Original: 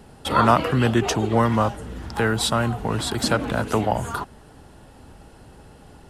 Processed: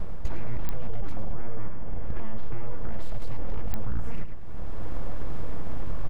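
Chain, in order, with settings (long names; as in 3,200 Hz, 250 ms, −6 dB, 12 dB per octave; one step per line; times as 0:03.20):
Butterworth high-pass 190 Hz 96 dB per octave
full-wave rectification
spectral tilt −4.5 dB per octave
automatic gain control gain up to 10 dB
brickwall limiter −14.5 dBFS, peak gain reduction 14 dB
single-tap delay 105 ms −10 dB
downward compressor 5 to 1, threshold −24 dBFS, peak gain reduction 9 dB
0:01.31–0:02.67: low-pass filter 3,000 Hz 12 dB per octave
digital clicks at 0:00.69/0:03.74, −21 dBFS
level +6.5 dB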